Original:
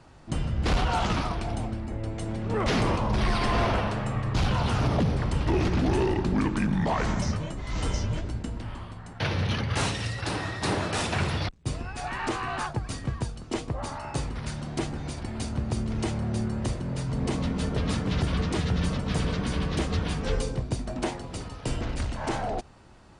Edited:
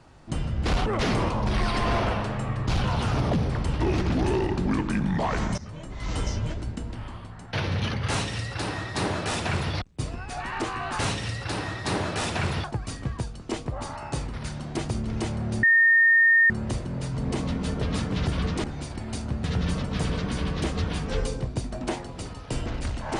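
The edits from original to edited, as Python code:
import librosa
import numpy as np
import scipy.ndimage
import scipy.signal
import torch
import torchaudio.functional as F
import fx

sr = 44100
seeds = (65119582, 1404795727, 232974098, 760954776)

y = fx.edit(x, sr, fx.cut(start_s=0.86, length_s=1.67),
    fx.fade_in_from(start_s=7.25, length_s=0.46, floor_db=-18.5),
    fx.duplicate(start_s=9.76, length_s=1.65, to_s=12.66),
    fx.move(start_s=14.91, length_s=0.8, to_s=18.59),
    fx.insert_tone(at_s=16.45, length_s=0.87, hz=1830.0, db=-14.5), tone=tone)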